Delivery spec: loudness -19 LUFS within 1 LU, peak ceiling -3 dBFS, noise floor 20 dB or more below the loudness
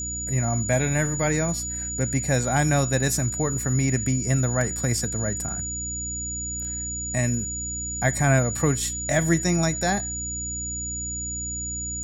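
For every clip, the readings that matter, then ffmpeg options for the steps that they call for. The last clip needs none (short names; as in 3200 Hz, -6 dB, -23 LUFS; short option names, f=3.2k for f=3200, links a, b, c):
hum 60 Hz; harmonics up to 300 Hz; hum level -34 dBFS; steady tone 6900 Hz; tone level -29 dBFS; loudness -24.5 LUFS; peak -8.0 dBFS; loudness target -19.0 LUFS
-> -af "bandreject=f=60:t=h:w=4,bandreject=f=120:t=h:w=4,bandreject=f=180:t=h:w=4,bandreject=f=240:t=h:w=4,bandreject=f=300:t=h:w=4"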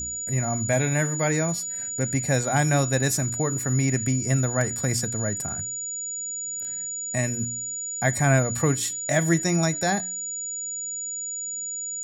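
hum none; steady tone 6900 Hz; tone level -29 dBFS
-> -af "bandreject=f=6.9k:w=30"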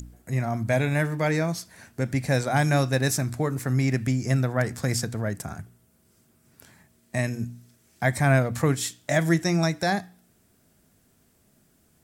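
steady tone none; loudness -25.5 LUFS; peak -8.5 dBFS; loudness target -19.0 LUFS
-> -af "volume=6.5dB,alimiter=limit=-3dB:level=0:latency=1"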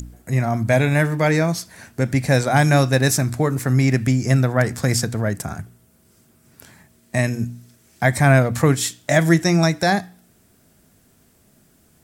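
loudness -19.0 LUFS; peak -3.0 dBFS; noise floor -57 dBFS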